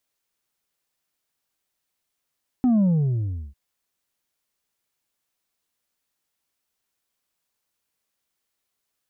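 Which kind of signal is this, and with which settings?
sub drop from 260 Hz, over 0.90 s, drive 3.5 dB, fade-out 0.72 s, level -16 dB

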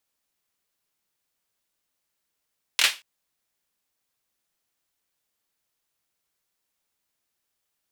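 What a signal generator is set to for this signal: hand clap length 0.23 s, bursts 3, apart 24 ms, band 2700 Hz, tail 0.25 s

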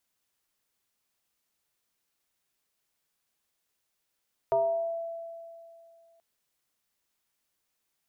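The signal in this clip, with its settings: FM tone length 1.68 s, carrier 668 Hz, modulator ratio 0.4, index 0.77, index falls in 0.88 s exponential, decay 2.52 s, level -20.5 dB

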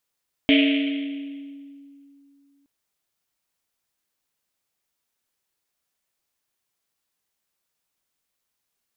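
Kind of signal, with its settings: Risset drum length 2.17 s, pitch 280 Hz, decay 2.84 s, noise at 2700 Hz, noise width 1300 Hz, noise 30%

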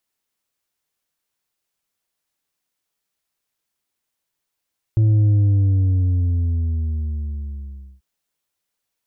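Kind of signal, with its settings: sub drop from 110 Hz, over 3.04 s, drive 4.5 dB, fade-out 2.74 s, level -12.5 dB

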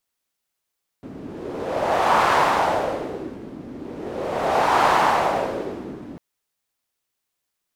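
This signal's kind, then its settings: wind-like swept noise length 5.15 s, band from 270 Hz, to 960 Hz, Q 2.3, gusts 2, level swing 19.5 dB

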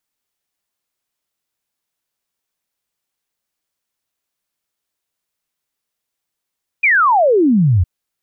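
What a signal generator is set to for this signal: log sweep 2500 Hz -> 81 Hz 1.01 s -9 dBFS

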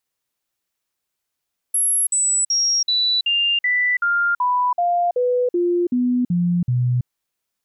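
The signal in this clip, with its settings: stepped sine 11200 Hz down, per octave 2, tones 14, 0.33 s, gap 0.05 s -15.5 dBFS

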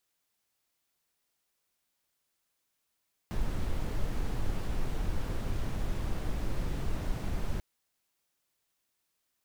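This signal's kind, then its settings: noise brown, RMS -30 dBFS 4.29 s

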